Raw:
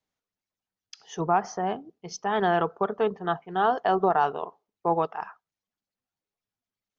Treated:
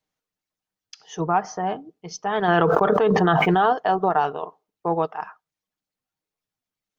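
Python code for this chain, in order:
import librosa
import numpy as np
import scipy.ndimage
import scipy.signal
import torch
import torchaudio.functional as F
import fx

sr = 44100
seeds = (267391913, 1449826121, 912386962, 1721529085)

y = x + 0.31 * np.pad(x, (int(6.5 * sr / 1000.0), 0))[:len(x)]
y = fx.env_flatten(y, sr, amount_pct=100, at=(2.48, 3.73))
y = y * 10.0 ** (2.0 / 20.0)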